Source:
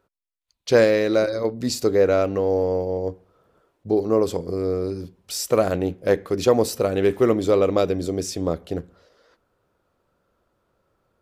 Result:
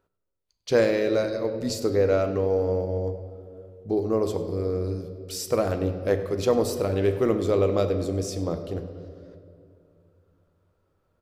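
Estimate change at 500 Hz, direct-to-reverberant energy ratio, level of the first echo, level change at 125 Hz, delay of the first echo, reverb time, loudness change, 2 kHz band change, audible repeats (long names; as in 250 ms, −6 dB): −4.0 dB, 7.5 dB, −17.0 dB, +1.0 dB, 99 ms, 2.5 s, −3.5 dB, −5.0 dB, 1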